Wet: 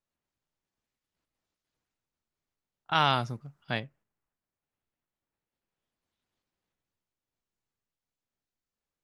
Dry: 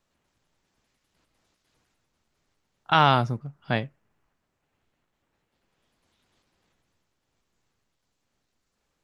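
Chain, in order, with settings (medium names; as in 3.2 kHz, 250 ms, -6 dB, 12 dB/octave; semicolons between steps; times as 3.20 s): gate -52 dBFS, range -8 dB; 2.95–3.80 s: treble shelf 2 kHz +9 dB; trim -8 dB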